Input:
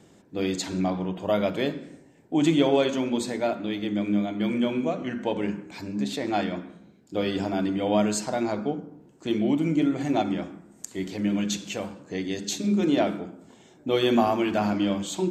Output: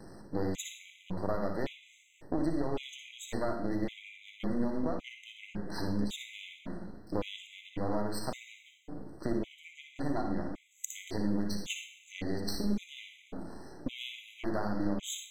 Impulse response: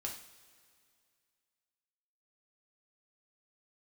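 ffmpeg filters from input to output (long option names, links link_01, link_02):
-filter_complex "[0:a]aeval=exprs='if(lt(val(0),0),0.251*val(0),val(0))':channel_layout=same,acompressor=threshold=-37dB:ratio=6,asplit=2[link_01][link_02];[1:a]atrim=start_sample=2205,lowshelf=frequency=98:gain=11,adelay=59[link_03];[link_02][link_03]afir=irnorm=-1:irlink=0,volume=-4.5dB[link_04];[link_01][link_04]amix=inputs=2:normalize=0,afftfilt=real='re*gt(sin(2*PI*0.9*pts/sr)*(1-2*mod(floor(b*sr/1024/2000),2)),0)':imag='im*gt(sin(2*PI*0.9*pts/sr)*(1-2*mod(floor(b*sr/1024/2000),2)),0)':win_size=1024:overlap=0.75,volume=7dB"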